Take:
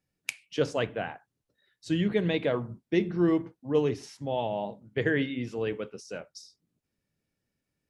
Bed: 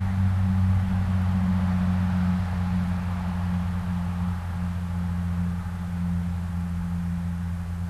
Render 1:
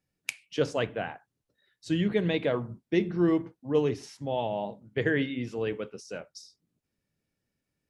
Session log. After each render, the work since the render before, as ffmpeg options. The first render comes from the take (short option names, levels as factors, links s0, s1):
-af anull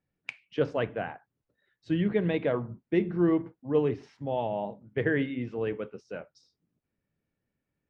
-af "lowpass=2300"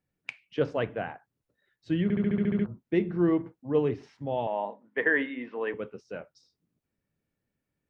-filter_complex "[0:a]asettb=1/sr,asplit=3[s0][s1][s2];[s0]atrim=end=4.474[s3];[s1]atrim=start=4.47:end=5.74,asetpts=PTS-STARTPTS,afade=t=in:d=0.004:c=qsin,afade=t=out:st=1.266:d=0.004:c=qsin,highpass=f=250:w=0.5412,highpass=f=250:w=1.3066,equalizer=f=350:t=q:w=4:g=-5,equalizer=f=1000:t=q:w=4:g=10,equalizer=f=1800:t=q:w=4:g=9,lowpass=f=4200:w=0.5412,lowpass=f=4200:w=1.3066[s4];[s2]atrim=start=5.736[s5];[s3][s4]acrossfade=d=0.004:c1=hsin:c2=qsin[s6];[s6][s5]acrossfade=d=0.004:c1=qsin:c2=hsin,asplit=10[s7][s8][s9][s10][s11][s12][s13][s14][s15][s16];[s7]atrim=end=2.102[s17];[s8]atrim=start=2.028:end=2.102[s18];[s9]atrim=start=2.028:end=2.102[s19];[s10]atrim=start=2.028:end=2.102[s20];[s11]atrim=start=2.028:end=2.102[s21];[s12]atrim=start=2.028:end=2.102[s22];[s13]atrim=start=2.028:end=2.102[s23];[s14]atrim=start=2.028:end=2.102[s24];[s15]atrim=start=2.028:end=2.102[s25];[s16]atrim=start=2.658[s26];[s17][s18]acrossfade=d=0.004:c1=hsin:c2=hsin[s27];[s27][s19]acrossfade=d=0.004:c1=hsin:c2=hsin[s28];[s28][s20]acrossfade=d=0.004:c1=hsin:c2=hsin[s29];[s29][s21]acrossfade=d=0.004:c1=hsin:c2=hsin[s30];[s30][s22]acrossfade=d=0.004:c1=hsin:c2=hsin[s31];[s31][s23]acrossfade=d=0.004:c1=hsin:c2=hsin[s32];[s32][s24]acrossfade=d=0.004:c1=hsin:c2=hsin[s33];[s33][s25]acrossfade=d=0.004:c1=hsin:c2=hsin[s34];[s34][s26]acrossfade=d=0.004:c1=hsin:c2=hsin"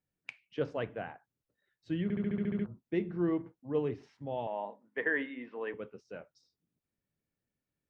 -af "volume=0.473"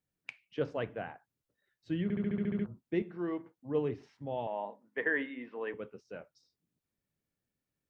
-filter_complex "[0:a]asettb=1/sr,asplit=3[s0][s1][s2];[s0]atrim=end=3.024[s3];[s1]atrim=start=3.02:end=3.57,asetpts=PTS-STARTPTS,afade=t=in:d=0.004:c=qsin,afade=t=out:st=0.546:d=0.004:c=qsin,highpass=f=500:p=1[s4];[s2]atrim=start=3.566[s5];[s3][s4]acrossfade=d=0.004:c1=hsin:c2=qsin[s6];[s6][s5]acrossfade=d=0.004:c1=qsin:c2=hsin"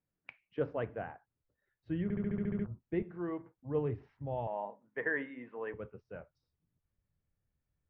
-af "lowpass=1800,asubboost=boost=7:cutoff=94"